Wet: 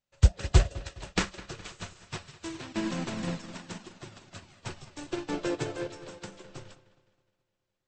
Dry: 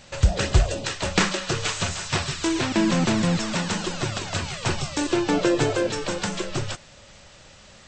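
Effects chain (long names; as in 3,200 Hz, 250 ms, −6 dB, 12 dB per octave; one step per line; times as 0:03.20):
on a send: delay with a low-pass on its return 208 ms, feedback 71%, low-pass 3,800 Hz, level −8 dB
on the sum: expander for the loud parts 2.5 to 1, over −39 dBFS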